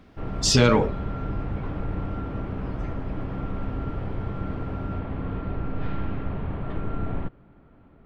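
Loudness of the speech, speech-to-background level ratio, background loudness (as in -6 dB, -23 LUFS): -21.0 LUFS, 11.0 dB, -32.0 LUFS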